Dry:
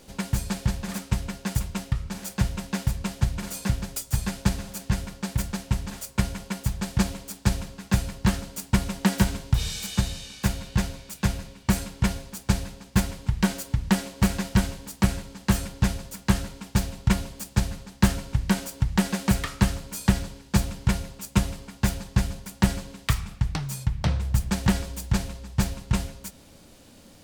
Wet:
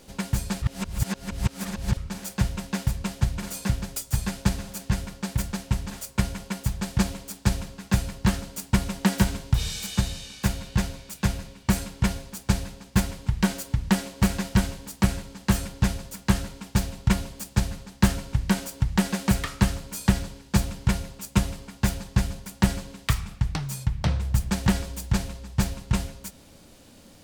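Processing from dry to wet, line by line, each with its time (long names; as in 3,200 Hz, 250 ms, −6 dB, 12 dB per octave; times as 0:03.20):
0:00.62–0:01.97: reverse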